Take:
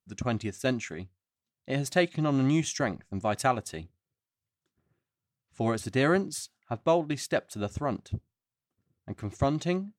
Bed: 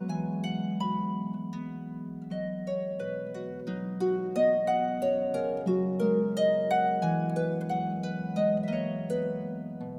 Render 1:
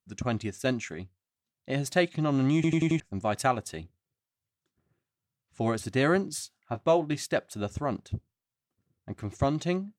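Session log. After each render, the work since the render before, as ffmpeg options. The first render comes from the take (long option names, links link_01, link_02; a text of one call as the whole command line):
ffmpeg -i in.wav -filter_complex "[0:a]asettb=1/sr,asplit=3[link_01][link_02][link_03];[link_01]atrim=end=6.294[link_04];[link_02]atrim=start=6.29:end=7.25,asetpts=PTS-STARTPTS,afade=type=in:duration=0.004:curve=qsin,afade=type=out:start_time=0.956:duration=0.004:curve=qsin,asplit=2[link_05][link_06];[link_06]adelay=20,volume=-10dB[link_07];[link_05][link_07]amix=inputs=2:normalize=0,atrim=end_sample=42336[link_08];[link_03]atrim=start=7.246[link_09];[link_04][link_08]acrossfade=duration=0.004:curve1=hsin:curve2=qsin[link_10];[link_10][link_09]acrossfade=duration=0.004:curve1=qsin:curve2=hsin,asplit=6[link_11][link_12][link_13][link_14][link_15][link_16];[link_11]atrim=end=2.642[link_17];[link_12]atrim=start=2.548:end=2.642[link_18];[link_13]atrim=start=2.548:end=2.642[link_19];[link_14]atrim=start=2.548:end=2.642[link_20];[link_15]atrim=start=2.548:end=2.642[link_21];[link_16]atrim=start=2.998[link_22];[link_17][link_18]acrossfade=duration=0.004:curve1=hsin:curve2=hsin[link_23];[link_23][link_19]acrossfade=duration=0.004:curve1=hsin:curve2=hsin[link_24];[link_24][link_20]acrossfade=duration=0.004:curve1=hsin:curve2=hsin[link_25];[link_25][link_21]acrossfade=duration=0.004:curve1=hsin:curve2=hsin[link_26];[link_26][link_22]acrossfade=duration=0.004:curve1=hsin:curve2=hsin" out.wav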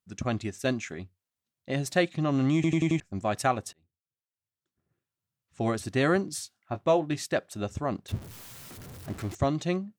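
ffmpeg -i in.wav -filter_complex "[0:a]asettb=1/sr,asplit=3[link_01][link_02][link_03];[link_01]atrim=end=8.084[link_04];[link_02]atrim=start=8.08:end=9.35,asetpts=PTS-STARTPTS,afade=type=in:duration=0.004:curve=qsin,afade=type=out:start_time=1.266:duration=0.004:curve=qsin,aeval=exprs='val(0)+0.5*0.0126*sgn(val(0))':channel_layout=same[link_05];[link_03]atrim=start=9.346[link_06];[link_04][link_05]acrossfade=duration=0.004:curve1=hsin:curve2=qsin[link_07];[link_07][link_06]acrossfade=duration=0.004:curve1=qsin:curve2=hsin,asplit=2[link_08][link_09];[link_08]atrim=end=3.73,asetpts=PTS-STARTPTS,afade=type=out:start_time=3.726:duration=0.004:curve=hsin[link_10];[link_09]atrim=start=3.73,asetpts=PTS-STARTPTS,afade=type=in:duration=1.91[link_11];[link_10][link_11]concat=n=2:v=0:a=1" out.wav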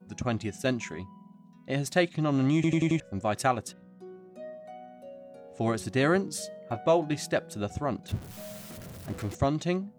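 ffmpeg -i in.wav -i bed.wav -filter_complex "[1:a]volume=-18.5dB[link_01];[0:a][link_01]amix=inputs=2:normalize=0" out.wav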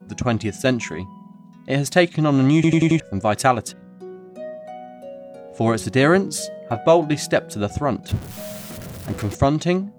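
ffmpeg -i in.wav -af "volume=9dB" out.wav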